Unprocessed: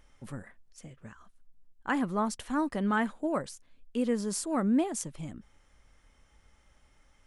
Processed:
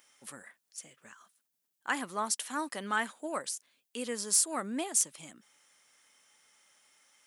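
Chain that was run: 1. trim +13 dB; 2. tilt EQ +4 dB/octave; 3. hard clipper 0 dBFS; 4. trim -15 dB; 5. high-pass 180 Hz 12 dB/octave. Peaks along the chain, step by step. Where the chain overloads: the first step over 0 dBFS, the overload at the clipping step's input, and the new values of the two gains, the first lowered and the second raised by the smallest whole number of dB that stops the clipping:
-4.0 dBFS, +7.0 dBFS, 0.0 dBFS, -15.0 dBFS, -15.0 dBFS; step 2, 7.0 dB; step 1 +6 dB, step 4 -8 dB

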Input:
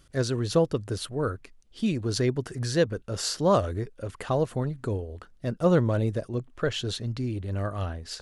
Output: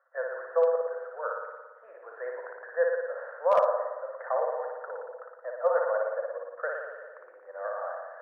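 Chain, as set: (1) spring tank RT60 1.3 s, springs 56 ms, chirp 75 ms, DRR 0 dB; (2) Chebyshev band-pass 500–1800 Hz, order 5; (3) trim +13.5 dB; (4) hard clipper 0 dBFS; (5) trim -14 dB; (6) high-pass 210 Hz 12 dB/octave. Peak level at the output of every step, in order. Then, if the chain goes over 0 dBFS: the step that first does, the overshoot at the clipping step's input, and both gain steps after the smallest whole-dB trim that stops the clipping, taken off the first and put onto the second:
-7.5 dBFS, -10.0 dBFS, +3.5 dBFS, 0.0 dBFS, -14.0 dBFS, -11.5 dBFS; step 3, 3.5 dB; step 3 +9.5 dB, step 5 -10 dB

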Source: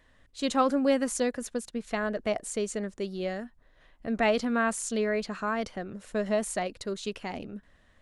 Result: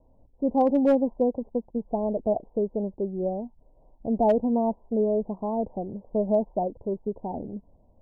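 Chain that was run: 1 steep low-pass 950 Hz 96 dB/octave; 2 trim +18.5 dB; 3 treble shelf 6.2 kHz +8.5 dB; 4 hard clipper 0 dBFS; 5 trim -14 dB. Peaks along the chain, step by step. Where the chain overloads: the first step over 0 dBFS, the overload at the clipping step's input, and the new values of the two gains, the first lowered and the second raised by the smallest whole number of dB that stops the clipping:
-15.0 dBFS, +3.5 dBFS, +3.5 dBFS, 0.0 dBFS, -14.0 dBFS; step 2, 3.5 dB; step 2 +14.5 dB, step 5 -10 dB

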